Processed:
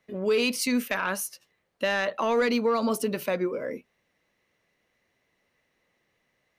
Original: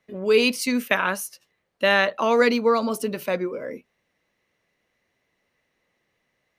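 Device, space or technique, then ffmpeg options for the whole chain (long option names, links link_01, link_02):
soft clipper into limiter: -af "asoftclip=type=tanh:threshold=-9.5dB,alimiter=limit=-17dB:level=0:latency=1:release=78"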